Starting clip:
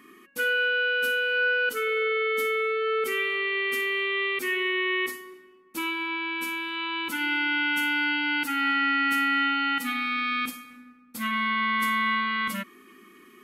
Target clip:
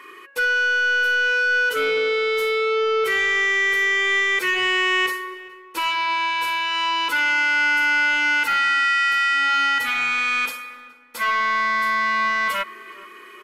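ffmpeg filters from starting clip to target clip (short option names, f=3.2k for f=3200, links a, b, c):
-filter_complex "[0:a]highpass=430,aecho=1:1:2:0.59,alimiter=limit=-21dB:level=0:latency=1:release=18,asplit=2[a][b];[b]highpass=f=720:p=1,volume=14dB,asoftclip=type=tanh:threshold=-16dB[c];[a][c]amix=inputs=2:normalize=0,lowpass=f=2k:p=1,volume=-6dB,asoftclip=type=tanh:threshold=-20dB,asplit=2[d][e];[e]adelay=419,lowpass=f=2.5k:p=1,volume=-20.5dB,asplit=2[f][g];[g]adelay=419,lowpass=f=2.5k:p=1,volume=0.38,asplit=2[h][i];[i]adelay=419,lowpass=f=2.5k:p=1,volume=0.38[j];[d][f][h][j]amix=inputs=4:normalize=0,volume=6.5dB"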